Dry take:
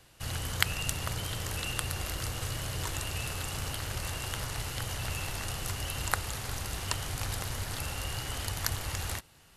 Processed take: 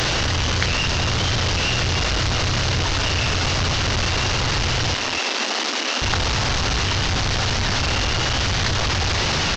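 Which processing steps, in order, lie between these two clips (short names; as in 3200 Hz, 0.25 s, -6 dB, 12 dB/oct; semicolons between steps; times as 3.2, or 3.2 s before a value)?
delta modulation 32 kbps, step -18 dBFS; 4.94–6.02 steep high-pass 220 Hz 72 dB/oct; echo 0.242 s -16 dB; gain +4 dB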